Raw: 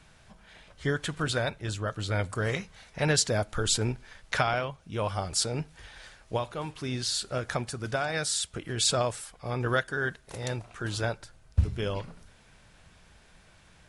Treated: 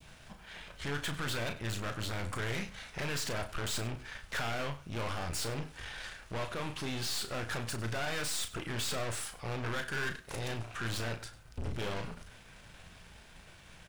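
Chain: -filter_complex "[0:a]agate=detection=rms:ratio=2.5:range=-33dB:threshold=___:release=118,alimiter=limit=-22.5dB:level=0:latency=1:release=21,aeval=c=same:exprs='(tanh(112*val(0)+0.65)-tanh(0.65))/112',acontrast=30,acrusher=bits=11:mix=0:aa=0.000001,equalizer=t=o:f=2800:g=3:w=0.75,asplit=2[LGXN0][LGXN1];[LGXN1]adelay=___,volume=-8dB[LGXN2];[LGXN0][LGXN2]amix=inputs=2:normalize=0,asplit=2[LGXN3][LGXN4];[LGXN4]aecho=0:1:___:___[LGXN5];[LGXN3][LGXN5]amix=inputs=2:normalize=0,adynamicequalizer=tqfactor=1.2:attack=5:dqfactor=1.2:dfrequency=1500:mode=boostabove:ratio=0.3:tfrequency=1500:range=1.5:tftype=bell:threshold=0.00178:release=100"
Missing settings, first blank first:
-55dB, 35, 98, 0.126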